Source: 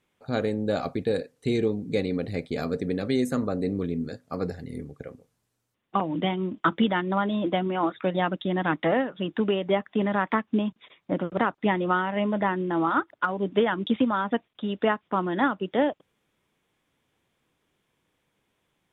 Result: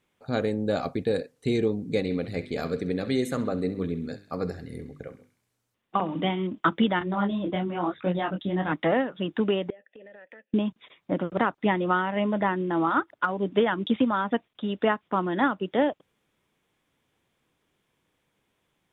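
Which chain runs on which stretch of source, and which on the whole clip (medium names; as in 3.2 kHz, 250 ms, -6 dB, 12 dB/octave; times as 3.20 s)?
1.98–6.47 s: hum notches 50/100/150/200/250/300/350/400 Hz + band-passed feedback delay 66 ms, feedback 65%, band-pass 2.8 kHz, level -11 dB
6.99–8.72 s: bass shelf 140 Hz +10 dB + detune thickener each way 35 cents
9.70–10.54 s: vowel filter e + compression 20:1, threshold -43 dBFS
whole clip: none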